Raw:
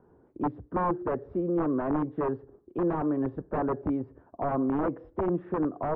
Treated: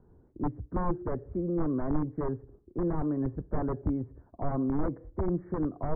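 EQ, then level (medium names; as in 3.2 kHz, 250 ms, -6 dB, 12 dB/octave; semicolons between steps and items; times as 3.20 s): brick-wall FIR low-pass 2.3 kHz; bass shelf 84 Hz +11.5 dB; bass shelf 240 Hz +10 dB; -7.5 dB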